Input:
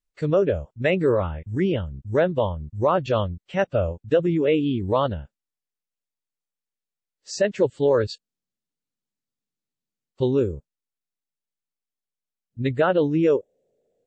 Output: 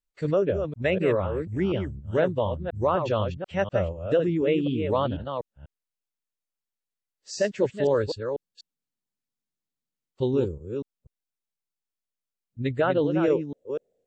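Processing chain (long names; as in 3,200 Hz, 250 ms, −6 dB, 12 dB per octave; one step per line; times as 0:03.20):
delay that plays each chunk backwards 246 ms, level −7 dB
level −3.5 dB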